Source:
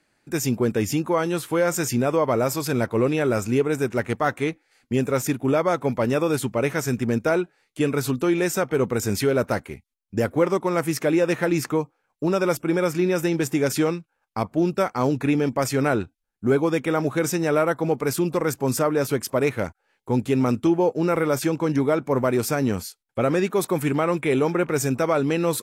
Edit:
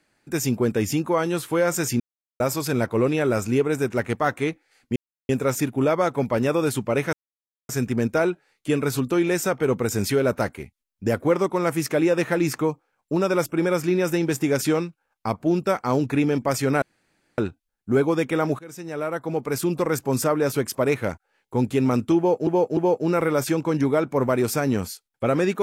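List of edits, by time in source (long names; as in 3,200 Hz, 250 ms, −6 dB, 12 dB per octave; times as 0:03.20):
0:02.00–0:02.40: silence
0:04.96: splice in silence 0.33 s
0:06.80: splice in silence 0.56 s
0:15.93: splice in room tone 0.56 s
0:17.14–0:18.32: fade in, from −23.5 dB
0:20.72–0:21.02: repeat, 3 plays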